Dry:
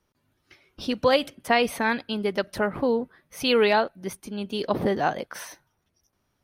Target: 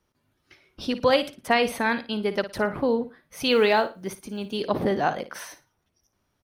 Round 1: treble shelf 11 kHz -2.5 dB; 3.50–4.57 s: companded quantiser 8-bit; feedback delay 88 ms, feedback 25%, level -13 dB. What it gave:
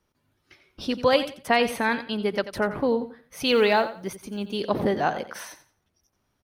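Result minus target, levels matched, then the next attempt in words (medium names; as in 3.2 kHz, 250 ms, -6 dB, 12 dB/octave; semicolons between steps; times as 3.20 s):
echo 32 ms late
treble shelf 11 kHz -2.5 dB; 3.50–4.57 s: companded quantiser 8-bit; feedback delay 56 ms, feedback 25%, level -13 dB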